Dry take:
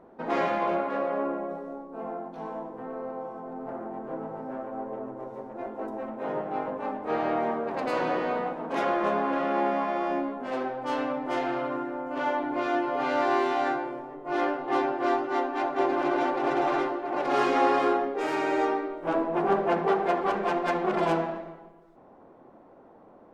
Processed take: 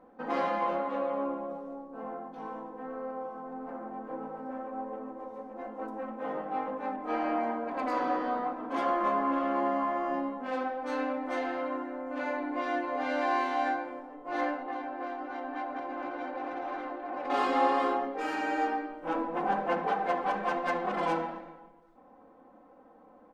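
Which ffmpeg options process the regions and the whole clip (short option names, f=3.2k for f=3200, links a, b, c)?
-filter_complex "[0:a]asettb=1/sr,asplit=3[a][b][c];[a]atrim=end=6.964[d];[b]atrim=start=6.96:end=10.14,asetpts=PTS-STARTPTS,afade=t=in:d=0.004:c=qsin,afade=t=out:st=3.176:d=0.004:c=qsin,aecho=1:1:3:0.5,atrim=end_sample=140238,adynamicequalizer=threshold=0.00891:dfrequency=2500:dqfactor=0.7:tfrequency=2500:tqfactor=0.7:attack=5:release=100:ratio=0.375:range=2:mode=cutabove:tftype=highshelf[e];[c]atrim=start=10.136[f];[d][e]acrossfade=d=0.004:c1=hsin:c2=qsin[g];[g][f]acrossfade=d=0.004:c1=qsin:c2=hsin,asettb=1/sr,asplit=3[h][i][j];[h]atrim=end=14.634[k];[i]atrim=start=14.63:end=17.3,asetpts=PTS-STARTPTS,afade=t=in:d=0.004:c=qsin,afade=t=out:st=2.666:d=0.004:c=qsin,lowpass=f=2.8k:p=1,acompressor=threshold=-28dB:ratio=6:attack=3.2:release=140:knee=1:detection=peak[l];[j]atrim=start=17.296[m];[k][l]acrossfade=d=0.004:c1=hsin:c2=qsin[n];[n][m]acrossfade=d=0.004:c1=qsin:c2=hsin,equalizer=f=1.3k:t=o:w=2.1:g=3,aecho=1:1:3.9:0.85,volume=-7.5dB"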